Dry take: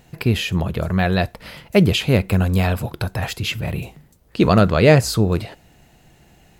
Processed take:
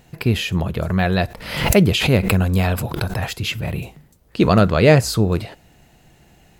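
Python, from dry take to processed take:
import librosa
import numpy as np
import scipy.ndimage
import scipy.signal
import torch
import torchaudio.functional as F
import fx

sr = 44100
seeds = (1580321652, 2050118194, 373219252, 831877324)

y = fx.pre_swell(x, sr, db_per_s=72.0, at=(0.89, 3.26))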